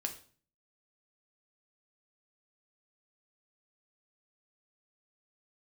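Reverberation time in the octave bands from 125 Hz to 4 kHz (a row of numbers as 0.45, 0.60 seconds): 0.65, 0.60, 0.45, 0.40, 0.40, 0.40 seconds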